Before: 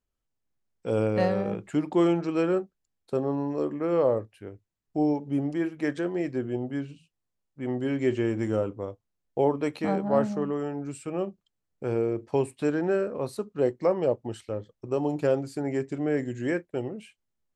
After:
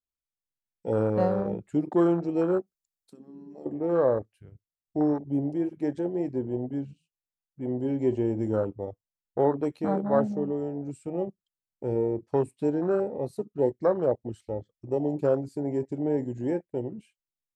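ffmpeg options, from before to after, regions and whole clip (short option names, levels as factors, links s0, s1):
-filter_complex "[0:a]asettb=1/sr,asplit=3[s0][s1][s2];[s0]atrim=end=2.604[s3];[s1]atrim=start=2.6:end=3.66,asetpts=PTS-STARTPTS,afade=t=in:d=0.004:c=qsin,afade=t=out:st=1.056:d=0.004:c=qsin,highshelf=f=3500:g=10,acompressor=threshold=0.00708:ratio=3:attack=3.2:release=140:knee=1:detection=peak[s4];[s2]atrim=start=3.656[s5];[s3][s4]acrossfade=d=0.004:c1=hsin:c2=qsin[s6];[s6][s5]acrossfade=d=0.004:c1=qsin:c2=hsin,afwtdn=0.0355,highshelf=f=3400:g=8"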